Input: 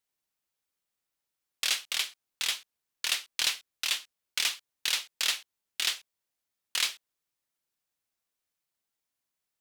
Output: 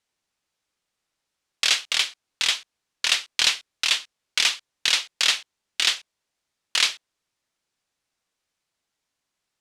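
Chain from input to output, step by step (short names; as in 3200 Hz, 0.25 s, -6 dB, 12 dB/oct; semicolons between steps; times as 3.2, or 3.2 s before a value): LPF 7500 Hz 12 dB/oct; gain +8.5 dB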